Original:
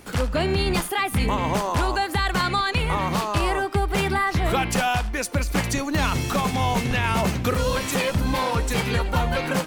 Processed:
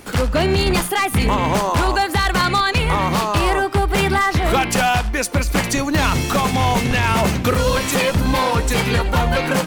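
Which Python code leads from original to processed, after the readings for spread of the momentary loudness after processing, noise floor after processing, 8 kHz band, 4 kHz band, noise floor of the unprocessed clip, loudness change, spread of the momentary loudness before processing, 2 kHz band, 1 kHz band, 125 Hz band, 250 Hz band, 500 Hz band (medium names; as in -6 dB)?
2 LU, -27 dBFS, +6.0 dB, +5.5 dB, -33 dBFS, +5.5 dB, 2 LU, +5.5 dB, +5.5 dB, +5.0 dB, +5.0 dB, +5.5 dB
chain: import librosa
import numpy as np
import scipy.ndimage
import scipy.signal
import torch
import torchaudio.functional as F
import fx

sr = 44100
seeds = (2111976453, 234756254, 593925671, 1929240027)

y = 10.0 ** (-15.0 / 20.0) * (np.abs((x / 10.0 ** (-15.0 / 20.0) + 3.0) % 4.0 - 2.0) - 1.0)
y = fx.hum_notches(y, sr, base_hz=60, count=3)
y = y * 10.0 ** (6.0 / 20.0)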